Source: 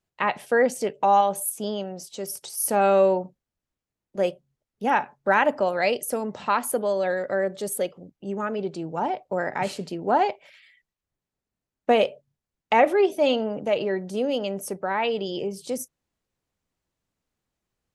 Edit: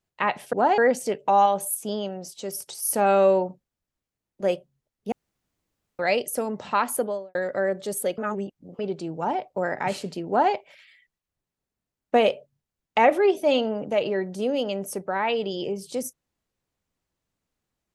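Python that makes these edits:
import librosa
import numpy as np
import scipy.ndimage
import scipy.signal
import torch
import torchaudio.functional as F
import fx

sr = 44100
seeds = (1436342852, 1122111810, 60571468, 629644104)

y = fx.studio_fade_out(x, sr, start_s=6.72, length_s=0.38)
y = fx.edit(y, sr, fx.room_tone_fill(start_s=4.87, length_s=0.87),
    fx.reverse_span(start_s=7.93, length_s=0.61),
    fx.duplicate(start_s=10.03, length_s=0.25, to_s=0.53), tone=tone)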